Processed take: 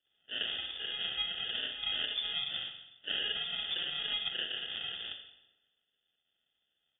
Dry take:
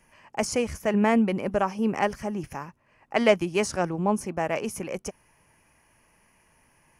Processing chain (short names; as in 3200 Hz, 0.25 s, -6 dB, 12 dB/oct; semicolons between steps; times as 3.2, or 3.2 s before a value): phase scrambler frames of 0.2 s; 1.83–4.28 tilt -3 dB/oct; gate -49 dBFS, range -10 dB; harmonic-percussive split harmonic -17 dB; compressor 3:1, threshold -34 dBFS, peak gain reduction 10 dB; fixed phaser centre 460 Hz, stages 6; sample-and-hold 36×; reverb RT60 1.1 s, pre-delay 39 ms, DRR 8 dB; inverted band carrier 3500 Hz; mismatched tape noise reduction decoder only; gain +3.5 dB